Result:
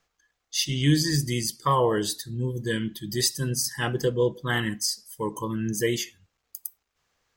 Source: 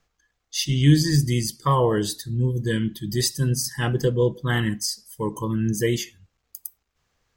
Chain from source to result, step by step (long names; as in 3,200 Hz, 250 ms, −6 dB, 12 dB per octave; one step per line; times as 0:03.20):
low-shelf EQ 230 Hz −9 dB